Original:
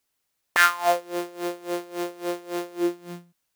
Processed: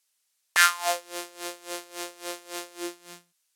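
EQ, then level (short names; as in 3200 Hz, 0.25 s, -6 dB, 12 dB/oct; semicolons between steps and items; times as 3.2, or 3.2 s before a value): LPF 9800 Hz 12 dB/oct; tilt +4 dB/oct; low shelf 130 Hz -10 dB; -4.5 dB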